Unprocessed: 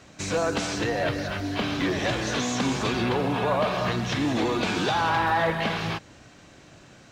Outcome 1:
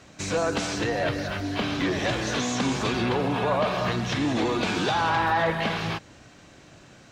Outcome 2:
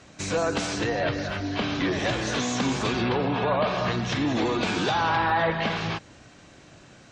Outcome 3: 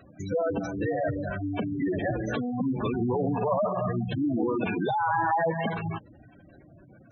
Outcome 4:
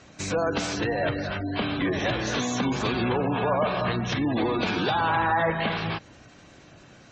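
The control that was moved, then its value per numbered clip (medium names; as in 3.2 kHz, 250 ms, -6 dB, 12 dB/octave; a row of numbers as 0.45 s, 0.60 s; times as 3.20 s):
spectral gate, under each frame's peak: -55 dB, -40 dB, -10 dB, -25 dB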